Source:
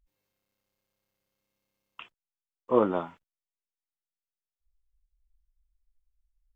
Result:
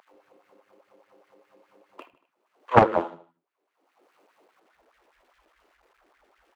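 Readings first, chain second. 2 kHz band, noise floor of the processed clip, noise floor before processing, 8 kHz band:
+15.5 dB, -79 dBFS, under -85 dBFS, no reading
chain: median filter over 25 samples; LFO high-pass sine 4.9 Hz 310–1800 Hz; on a send: feedback delay 77 ms, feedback 40%, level -16.5 dB; on the sum: upward compressor, threshold -50 dBFS; treble shelf 3.1 kHz -12 dB; bands offset in time highs, lows 140 ms, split 170 Hz; in parallel at -1 dB: compression, threshold -46 dBFS, peak gain reduction 29.5 dB; on the sum: loudspeaker Doppler distortion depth 0.93 ms; trim +4 dB

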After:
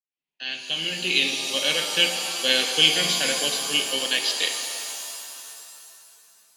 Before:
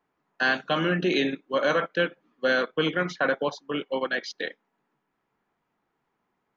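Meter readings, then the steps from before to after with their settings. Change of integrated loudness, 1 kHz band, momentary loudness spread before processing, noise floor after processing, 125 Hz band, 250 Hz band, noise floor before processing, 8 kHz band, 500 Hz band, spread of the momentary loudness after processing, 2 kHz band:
+5.0 dB, -4.5 dB, 6 LU, under -85 dBFS, -6.0 dB, -6.5 dB, -78 dBFS, no reading, -5.5 dB, 17 LU, +0.5 dB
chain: fade-in on the opening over 2.08 s; resonant high shelf 1.9 kHz +13.5 dB, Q 3; pitch-shifted reverb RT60 2.6 s, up +7 st, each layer -2 dB, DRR 5 dB; trim -5 dB

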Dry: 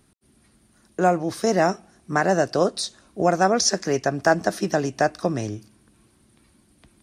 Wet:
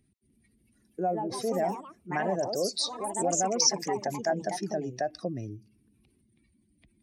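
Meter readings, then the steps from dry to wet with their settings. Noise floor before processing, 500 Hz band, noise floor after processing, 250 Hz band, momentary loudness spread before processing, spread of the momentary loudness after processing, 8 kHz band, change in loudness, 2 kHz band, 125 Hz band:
-61 dBFS, -8.5 dB, -69 dBFS, -9.5 dB, 10 LU, 12 LU, -1.5 dB, -7.0 dB, -13.5 dB, -10.0 dB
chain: spectral contrast enhancement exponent 1.9; resonant high shelf 1.7 kHz +6.5 dB, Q 3; ever faster or slower copies 301 ms, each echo +3 st, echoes 3, each echo -6 dB; trim -9 dB

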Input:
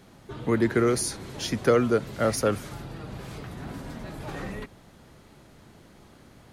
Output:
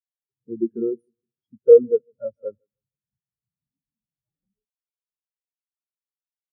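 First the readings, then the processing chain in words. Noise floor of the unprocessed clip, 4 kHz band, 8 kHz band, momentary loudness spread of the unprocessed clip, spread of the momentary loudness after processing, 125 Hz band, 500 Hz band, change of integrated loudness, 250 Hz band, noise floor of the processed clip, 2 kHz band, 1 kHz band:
-54 dBFS, under -40 dB, under -40 dB, 17 LU, 22 LU, under -20 dB, +7.0 dB, +8.5 dB, -4.5 dB, under -85 dBFS, under -40 dB, under -25 dB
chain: on a send: bucket-brigade echo 155 ms, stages 2048, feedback 57%, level -11 dB; on the sum: spectral contrast expander 4:1; trim +6 dB

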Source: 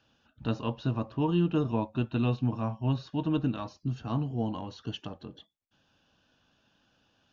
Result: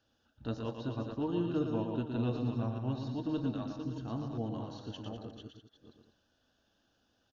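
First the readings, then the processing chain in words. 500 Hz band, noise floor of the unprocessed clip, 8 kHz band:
-3.0 dB, -71 dBFS, no reading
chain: chunks repeated in reverse 398 ms, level -7.5 dB; fifteen-band graphic EQ 160 Hz -9 dB, 1 kHz -6 dB, 2.5 kHz -9 dB; loudspeakers at several distances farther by 40 m -6 dB, 68 m -11 dB; trim -4 dB

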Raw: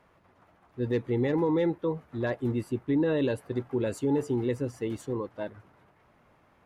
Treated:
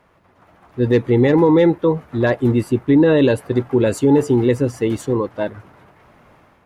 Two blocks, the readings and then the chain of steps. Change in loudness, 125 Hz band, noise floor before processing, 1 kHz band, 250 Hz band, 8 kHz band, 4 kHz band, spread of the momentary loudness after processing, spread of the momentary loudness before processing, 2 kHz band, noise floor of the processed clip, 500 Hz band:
+13.0 dB, +13.0 dB, -64 dBFS, +13.0 dB, +13.0 dB, +13.0 dB, +13.0 dB, 9 LU, 9 LU, +13.0 dB, -55 dBFS, +13.0 dB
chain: level rider gain up to 7 dB; trim +6 dB

